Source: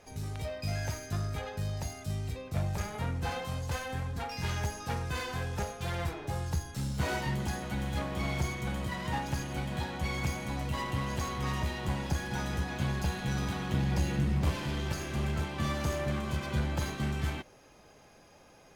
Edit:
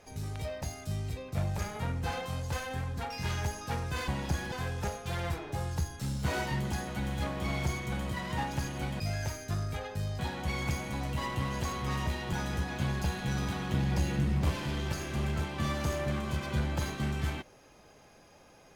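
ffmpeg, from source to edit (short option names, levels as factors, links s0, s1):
-filter_complex "[0:a]asplit=7[s0][s1][s2][s3][s4][s5][s6];[s0]atrim=end=0.622[s7];[s1]atrim=start=1.808:end=5.272[s8];[s2]atrim=start=11.888:end=12.332[s9];[s3]atrim=start=5.268:end=9.752[s10];[s4]atrim=start=0.618:end=1.812[s11];[s5]atrim=start=9.748:end=11.892[s12];[s6]atrim=start=12.328[s13];[s7][s8]acrossfade=d=0.004:c1=hsin:c2=hsin[s14];[s14][s9]acrossfade=d=0.004:c1=hsin:c2=hsin[s15];[s15][s10]acrossfade=d=0.004:c1=hsin:c2=hsin[s16];[s16][s11]acrossfade=d=0.004:c1=hsin:c2=hsin[s17];[s17][s12]acrossfade=d=0.004:c1=hsin:c2=hsin[s18];[s18][s13]acrossfade=d=0.004:c1=hsin:c2=hsin"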